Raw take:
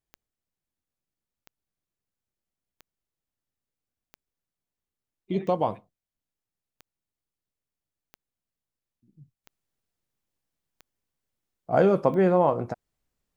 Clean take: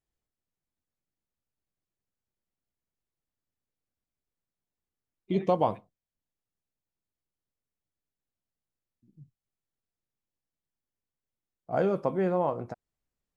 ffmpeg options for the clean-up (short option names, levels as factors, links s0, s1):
-af "adeclick=t=4,asetnsamples=n=441:p=0,asendcmd='9.44 volume volume -6.5dB',volume=1"